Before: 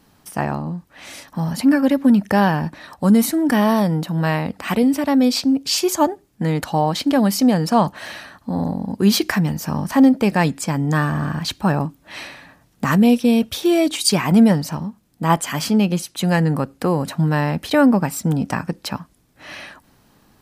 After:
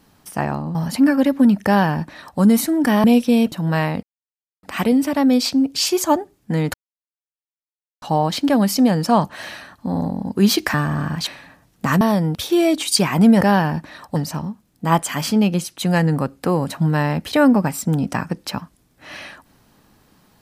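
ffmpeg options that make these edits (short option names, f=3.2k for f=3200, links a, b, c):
-filter_complex "[0:a]asplit=12[a][b][c][d][e][f][g][h][i][j][k][l];[a]atrim=end=0.752[m];[b]atrim=start=1.398:end=3.692[n];[c]atrim=start=12.998:end=13.482[o];[d]atrim=start=4.028:end=4.54,asetpts=PTS-STARTPTS,afade=t=out:st=0.508:d=0.004:c=hsin,apad=pad_dur=0.6[p];[e]atrim=start=4.54:end=6.65,asetpts=PTS-STARTPTS,afade=t=in:d=0.004:c=hsin,afade=t=out:st=2.106:d=0.004:c=hsin,apad=pad_dur=1.28[q];[f]atrim=start=6.65:end=9.372,asetpts=PTS-STARTPTS,afade=t=in:d=0.004:c=hsin[r];[g]atrim=start=10.978:end=11.512[s];[h]atrim=start=12.258:end=13.002[t];[i]atrim=start=3.688:end=4.032[u];[j]atrim=start=13.478:end=14.542[v];[k]atrim=start=2.298:end=3.052[w];[l]atrim=start=14.538[x];[m][n]acrossfade=d=0.004:c1=hsin:c2=hsin[y];[y][o]acrossfade=d=0.004:c1=hsin:c2=hsin[z];[p][q][r]concat=n=3:v=0:a=1[aa];[z][aa]acrossfade=d=0.004:c1=hsin:c2=hsin[ab];[ab][s]acrossfade=d=0.004:c1=hsin:c2=hsin[ac];[ac][t]acrossfade=d=0.004:c1=hsin:c2=hsin[ad];[ad][u]acrossfade=d=0.004:c1=hsin:c2=hsin[ae];[ae][v]acrossfade=d=0.004:c1=hsin:c2=hsin[af];[af][w]acrossfade=d=0.004:c1=hsin:c2=hsin[ag];[ag][x]acrossfade=d=0.004:c1=hsin:c2=hsin"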